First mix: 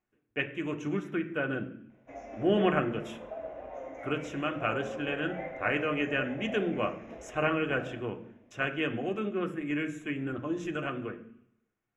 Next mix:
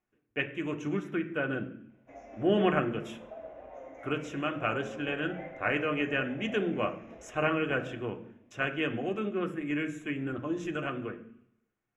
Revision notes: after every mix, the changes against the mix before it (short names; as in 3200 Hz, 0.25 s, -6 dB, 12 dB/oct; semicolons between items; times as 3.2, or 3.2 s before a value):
background -4.5 dB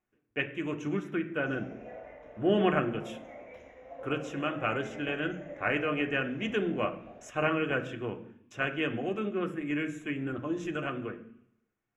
background: entry -0.70 s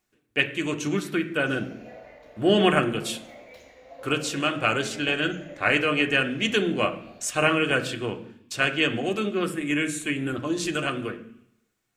speech +5.5 dB; master: remove running mean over 10 samples